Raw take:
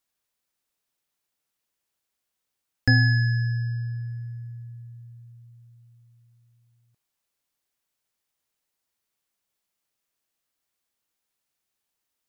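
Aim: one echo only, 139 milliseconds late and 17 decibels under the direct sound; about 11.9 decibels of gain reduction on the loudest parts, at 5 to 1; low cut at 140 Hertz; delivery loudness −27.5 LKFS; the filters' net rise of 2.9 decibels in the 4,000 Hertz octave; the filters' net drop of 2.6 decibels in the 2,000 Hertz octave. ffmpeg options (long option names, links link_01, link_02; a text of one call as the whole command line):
ffmpeg -i in.wav -af "highpass=140,equalizer=frequency=2000:width_type=o:gain=-4,equalizer=frequency=4000:width_type=o:gain=5,acompressor=threshold=-30dB:ratio=5,aecho=1:1:139:0.141,volume=9dB" out.wav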